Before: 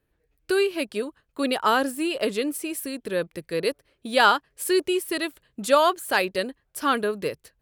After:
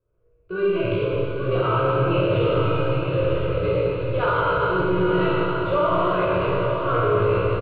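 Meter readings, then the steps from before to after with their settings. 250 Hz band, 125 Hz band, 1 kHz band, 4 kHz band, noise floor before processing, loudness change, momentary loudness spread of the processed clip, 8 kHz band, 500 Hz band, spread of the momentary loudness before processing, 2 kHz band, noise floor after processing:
+2.5 dB, +22.5 dB, +1.0 dB, −6.0 dB, −73 dBFS, +3.0 dB, 3 LU, below −35 dB, +5.0 dB, 12 LU, −1.5 dB, −59 dBFS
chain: sub-octave generator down 1 octave, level +1 dB
treble cut that deepens with the level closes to 1,500 Hz, closed at −19.5 dBFS
transient designer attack −5 dB, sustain +9 dB
low-pass that shuts in the quiet parts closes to 1,100 Hz, open at −14.5 dBFS
double-tracking delay 17 ms −3 dB
four-comb reverb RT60 2.5 s, combs from 26 ms, DRR −7.5 dB
in parallel at −5.5 dB: gain into a clipping stage and back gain 9.5 dB
on the sum: high-shelf EQ 9,900 Hz +7 dB
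phaser with its sweep stopped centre 1,200 Hz, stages 8
brickwall limiter −8 dBFS, peak gain reduction 9 dB
high-frequency loss of the air 120 metres
feedback delay with all-pass diffusion 922 ms, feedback 41%, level −5.5 dB
level −4.5 dB

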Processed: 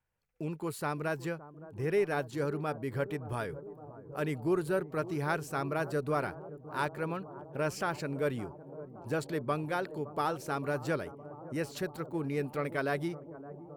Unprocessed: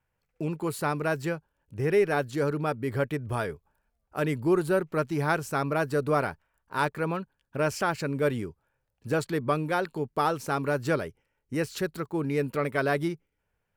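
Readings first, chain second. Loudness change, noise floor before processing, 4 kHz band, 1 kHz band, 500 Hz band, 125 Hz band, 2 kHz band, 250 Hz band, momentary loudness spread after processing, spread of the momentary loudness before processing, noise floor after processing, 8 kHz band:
−6.0 dB, −79 dBFS, −6.0 dB, −6.0 dB, −5.5 dB, −5.5 dB, −6.0 dB, −5.5 dB, 12 LU, 10 LU, −51 dBFS, −6.0 dB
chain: bucket-brigade delay 566 ms, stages 4,096, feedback 81%, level −16 dB
level −6 dB

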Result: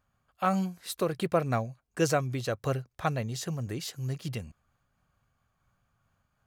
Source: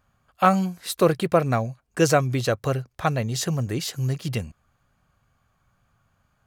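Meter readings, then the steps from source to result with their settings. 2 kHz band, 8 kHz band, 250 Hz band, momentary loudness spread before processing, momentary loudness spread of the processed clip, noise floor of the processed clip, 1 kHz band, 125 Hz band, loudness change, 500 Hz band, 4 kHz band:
−7.5 dB, −8.0 dB, −7.5 dB, 9 LU, 8 LU, −77 dBFS, −8.0 dB, −7.5 dB, −7.5 dB, −8.0 dB, −8.0 dB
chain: amplitude modulation by smooth noise, depth 55%
level −5 dB

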